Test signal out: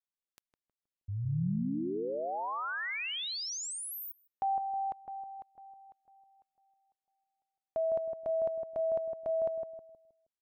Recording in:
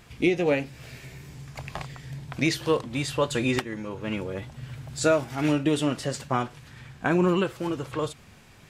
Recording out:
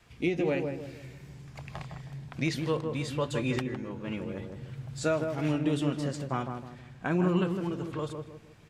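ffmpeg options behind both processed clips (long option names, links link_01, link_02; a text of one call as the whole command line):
ffmpeg -i in.wav -filter_complex "[0:a]highshelf=frequency=9100:gain=-6.5,asplit=2[link_01][link_02];[link_02]adelay=158,lowpass=frequency=910:poles=1,volume=-4dB,asplit=2[link_03][link_04];[link_04]adelay=158,lowpass=frequency=910:poles=1,volume=0.41,asplit=2[link_05][link_06];[link_06]adelay=158,lowpass=frequency=910:poles=1,volume=0.41,asplit=2[link_07][link_08];[link_08]adelay=158,lowpass=frequency=910:poles=1,volume=0.41,asplit=2[link_09][link_10];[link_10]adelay=158,lowpass=frequency=910:poles=1,volume=0.41[link_11];[link_01][link_03][link_05][link_07][link_09][link_11]amix=inputs=6:normalize=0,adynamicequalizer=threshold=0.00891:dfrequency=160:dqfactor=1.7:tfrequency=160:tqfactor=1.7:attack=5:release=100:ratio=0.375:range=2.5:mode=boostabove:tftype=bell,volume=-7dB" out.wav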